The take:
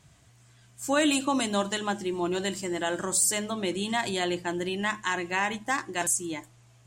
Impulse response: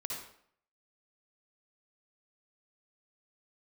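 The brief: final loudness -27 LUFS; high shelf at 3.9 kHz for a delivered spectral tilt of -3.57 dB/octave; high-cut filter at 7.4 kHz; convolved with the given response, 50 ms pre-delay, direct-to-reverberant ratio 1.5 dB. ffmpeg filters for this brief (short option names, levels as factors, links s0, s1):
-filter_complex "[0:a]lowpass=7400,highshelf=f=3900:g=-4,asplit=2[s0][s1];[1:a]atrim=start_sample=2205,adelay=50[s2];[s1][s2]afir=irnorm=-1:irlink=0,volume=0.75[s3];[s0][s3]amix=inputs=2:normalize=0"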